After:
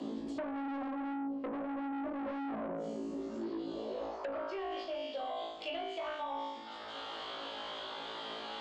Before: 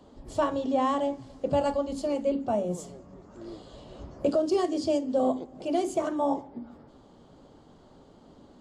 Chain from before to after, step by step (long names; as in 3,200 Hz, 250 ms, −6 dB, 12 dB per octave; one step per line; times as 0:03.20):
band-pass filter sweep 250 Hz → 3,400 Hz, 0:03.65–0:04.76
on a send: flutter between parallel walls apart 3.1 metres, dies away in 0.67 s
on the sum: soft clipping −36.5 dBFS, distortion −3 dB
parametric band 130 Hz −15 dB 1.6 octaves
treble cut that deepens with the level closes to 1,200 Hz, closed at −40 dBFS
reversed playback
downward compressor, threshold −51 dBFS, peak gain reduction 11.5 dB
reversed playback
low-shelf EQ 81 Hz −10 dB
multiband upward and downward compressor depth 100%
level +15 dB